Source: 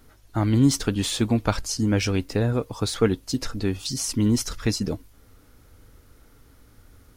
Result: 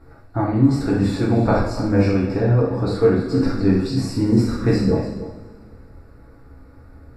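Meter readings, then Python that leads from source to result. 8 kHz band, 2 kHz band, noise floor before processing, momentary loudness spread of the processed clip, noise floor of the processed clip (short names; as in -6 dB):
-13.0 dB, +2.5 dB, -55 dBFS, 6 LU, -46 dBFS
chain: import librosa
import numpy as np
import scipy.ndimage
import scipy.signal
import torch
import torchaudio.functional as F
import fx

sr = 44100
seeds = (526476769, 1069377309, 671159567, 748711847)

y = fx.spec_trails(x, sr, decay_s=0.38)
y = scipy.signal.lfilter(np.full(14, 1.0 / 14), 1.0, y)
y = y + 10.0 ** (-13.0 / 20.0) * np.pad(y, (int(292 * sr / 1000.0), 0))[:len(y)]
y = fx.rev_double_slope(y, sr, seeds[0], early_s=0.55, late_s=2.2, knee_db=-18, drr_db=-4.5)
y = fx.rider(y, sr, range_db=4, speed_s=0.5)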